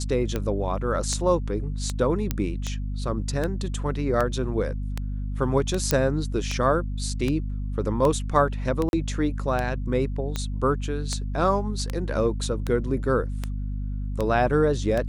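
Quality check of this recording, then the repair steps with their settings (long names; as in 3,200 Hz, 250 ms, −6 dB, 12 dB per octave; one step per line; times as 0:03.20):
mains hum 50 Hz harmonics 5 −29 dBFS
scratch tick 78 rpm −13 dBFS
0:02.31: click −10 dBFS
0:05.91: click −5 dBFS
0:08.89–0:08.93: drop-out 41 ms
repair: click removal
hum removal 50 Hz, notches 5
repair the gap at 0:08.89, 41 ms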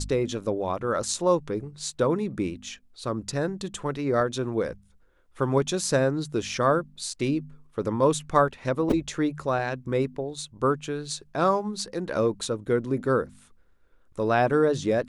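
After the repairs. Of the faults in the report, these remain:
none of them is left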